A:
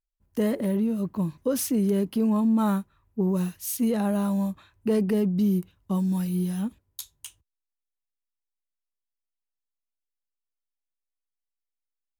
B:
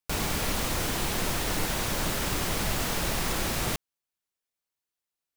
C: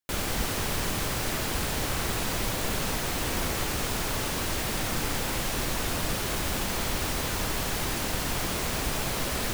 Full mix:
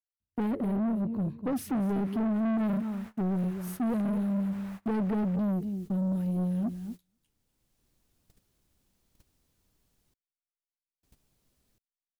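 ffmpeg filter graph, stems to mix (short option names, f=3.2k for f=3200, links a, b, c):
-filter_complex "[0:a]equalizer=f=100:t=o:w=0.67:g=7,equalizer=f=250:t=o:w=0.67:g=6,equalizer=f=1k:t=o:w=0.67:g=-6,equalizer=f=6.3k:t=o:w=0.67:g=-5,volume=-1.5dB,asplit=3[a][b][c];[b]volume=-12dB[d];[1:a]acrossover=split=2700[e][f];[f]acompressor=threshold=-47dB:ratio=4:attack=1:release=60[g];[e][g]amix=inputs=2:normalize=0,highpass=890,adelay=1600,volume=-12dB[h];[2:a]acrossover=split=350|3000[i][j][k];[j]acompressor=threshold=-43dB:ratio=4[l];[i][l][k]amix=inputs=3:normalize=0,highshelf=f=4.5k:g=12,adelay=2250,volume=-14.5dB,asplit=3[m][n][o];[m]atrim=end=10.14,asetpts=PTS-STARTPTS,afade=t=out:st=10.136:d=0.004:c=hsin[p];[n]atrim=start=10.14:end=11.03,asetpts=PTS-STARTPTS,volume=0[q];[o]atrim=start=11.03,asetpts=PTS-STARTPTS,afade=t=in:d=0.004:c=hsin[r];[p][q][r]concat=n=3:v=0:a=1[s];[c]apad=whole_len=519549[t];[s][t]sidechaincompress=threshold=-40dB:ratio=4:attack=16:release=965[u];[d]aecho=0:1:244|488|732:1|0.19|0.0361[v];[a][h][u][v]amix=inputs=4:normalize=0,highshelf=f=2.6k:g=-12,agate=range=-27dB:threshold=-39dB:ratio=16:detection=peak,asoftclip=type=tanh:threshold=-26dB"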